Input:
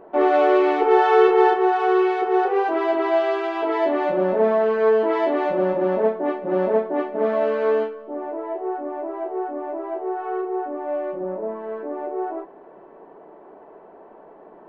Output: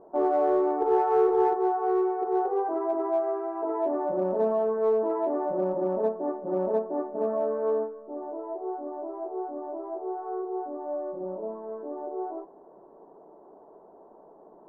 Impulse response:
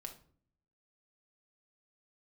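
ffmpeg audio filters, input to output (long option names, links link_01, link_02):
-filter_complex "[0:a]lowpass=frequency=1100:width=0.5412,lowpass=frequency=1100:width=1.3066,asplit=2[link_01][link_02];[link_02]asoftclip=type=hard:threshold=-14dB,volume=-11dB[link_03];[link_01][link_03]amix=inputs=2:normalize=0,volume=-8.5dB"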